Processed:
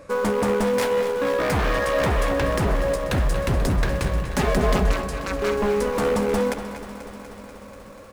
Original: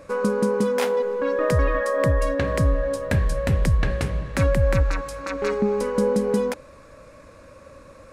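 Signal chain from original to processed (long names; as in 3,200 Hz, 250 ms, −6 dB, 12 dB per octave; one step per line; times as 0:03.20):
wave folding −18 dBFS
0:04.28–0:04.91: comb filter 4.8 ms, depth 69%
in parallel at −11.5 dB: centre clipping without the shift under −23.5 dBFS
on the sum: far-end echo of a speakerphone 230 ms, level −9 dB
feedback echo at a low word length 243 ms, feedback 80%, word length 8 bits, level −13 dB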